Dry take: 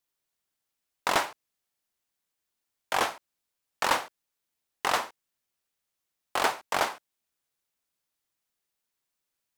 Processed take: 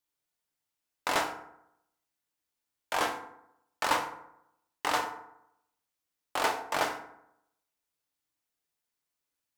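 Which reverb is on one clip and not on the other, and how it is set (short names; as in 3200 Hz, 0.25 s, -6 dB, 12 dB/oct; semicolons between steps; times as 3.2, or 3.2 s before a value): FDN reverb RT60 0.79 s, low-frequency decay 1.05×, high-frequency decay 0.5×, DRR 3.5 dB; gain -4 dB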